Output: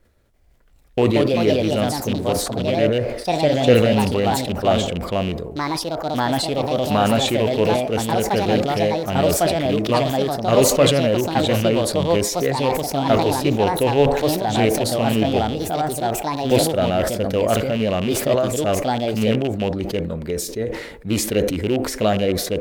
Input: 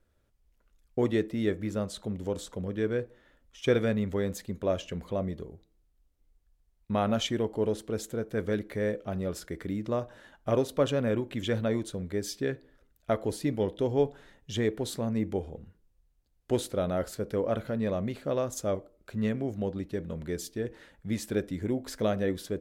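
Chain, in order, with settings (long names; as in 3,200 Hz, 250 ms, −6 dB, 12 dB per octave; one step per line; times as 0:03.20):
loose part that buzzes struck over −30 dBFS, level −29 dBFS
delay with pitch and tempo change per echo 339 ms, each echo +3 semitones, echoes 2
formants moved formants +2 semitones
delay with a band-pass on its return 77 ms, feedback 66%, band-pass 600 Hz, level −19.5 dB
level that may fall only so fast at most 57 dB per second
level +9 dB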